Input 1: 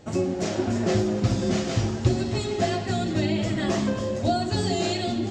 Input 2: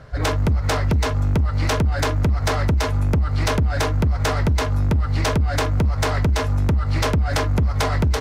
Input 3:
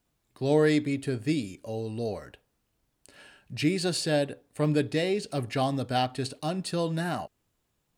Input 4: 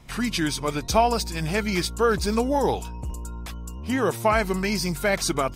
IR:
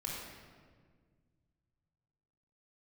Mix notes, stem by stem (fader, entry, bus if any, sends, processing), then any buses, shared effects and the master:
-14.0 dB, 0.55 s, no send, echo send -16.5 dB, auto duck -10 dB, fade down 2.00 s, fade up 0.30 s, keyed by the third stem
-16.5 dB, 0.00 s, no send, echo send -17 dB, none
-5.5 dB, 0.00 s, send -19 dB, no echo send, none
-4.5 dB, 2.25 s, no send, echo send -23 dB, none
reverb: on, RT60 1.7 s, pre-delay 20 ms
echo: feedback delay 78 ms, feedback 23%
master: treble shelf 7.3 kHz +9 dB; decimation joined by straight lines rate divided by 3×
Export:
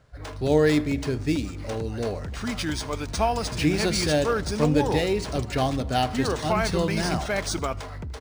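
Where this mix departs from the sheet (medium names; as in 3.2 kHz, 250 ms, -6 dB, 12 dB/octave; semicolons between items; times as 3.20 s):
stem 1 -14.0 dB -> -24.0 dB; stem 3 -5.5 dB -> +2.0 dB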